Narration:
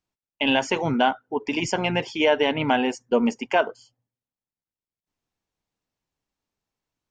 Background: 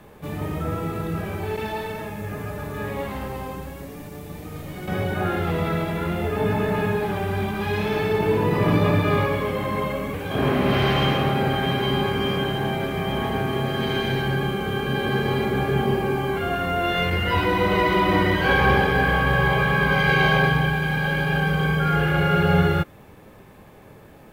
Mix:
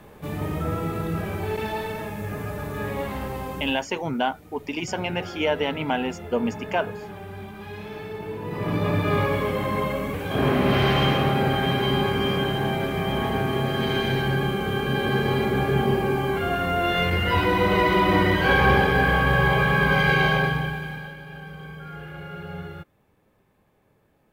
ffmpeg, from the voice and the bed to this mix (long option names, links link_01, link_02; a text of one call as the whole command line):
ffmpeg -i stem1.wav -i stem2.wav -filter_complex "[0:a]adelay=3200,volume=-4dB[link_01];[1:a]volume=12.5dB,afade=type=out:start_time=3.61:duration=0.23:silence=0.237137,afade=type=in:start_time=8.41:duration=0.96:silence=0.237137,afade=type=out:start_time=19.99:duration=1.17:silence=0.133352[link_02];[link_01][link_02]amix=inputs=2:normalize=0" out.wav